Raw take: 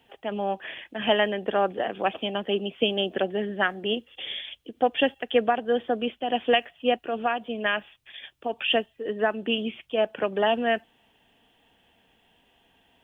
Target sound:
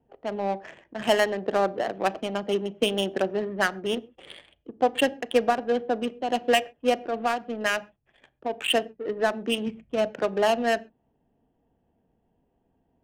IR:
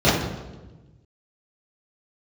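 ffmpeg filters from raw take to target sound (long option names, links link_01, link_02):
-filter_complex "[0:a]asplit=3[link_01][link_02][link_03];[link_01]afade=type=out:start_time=9.66:duration=0.02[link_04];[link_02]asubboost=boost=2.5:cutoff=230,afade=type=in:start_time=9.66:duration=0.02,afade=type=out:start_time=10.12:duration=0.02[link_05];[link_03]afade=type=in:start_time=10.12:duration=0.02[link_06];[link_04][link_05][link_06]amix=inputs=3:normalize=0,adynamicsmooth=sensitivity=3:basefreq=530,asplit=2[link_07][link_08];[1:a]atrim=start_sample=2205,atrim=end_sample=6174[link_09];[link_08][link_09]afir=irnorm=-1:irlink=0,volume=-39.5dB[link_10];[link_07][link_10]amix=inputs=2:normalize=0"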